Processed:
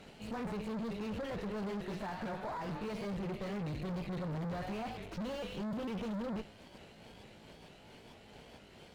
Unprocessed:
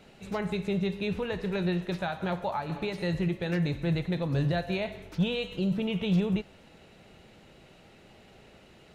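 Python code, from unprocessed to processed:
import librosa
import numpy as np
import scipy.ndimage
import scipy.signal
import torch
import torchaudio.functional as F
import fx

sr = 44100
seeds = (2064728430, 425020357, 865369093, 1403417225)

y = fx.pitch_ramps(x, sr, semitones=3.0, every_ms=452)
y = fx.tube_stage(y, sr, drive_db=41.0, bias=0.7)
y = fx.slew_limit(y, sr, full_power_hz=7.9)
y = y * librosa.db_to_amplitude(4.5)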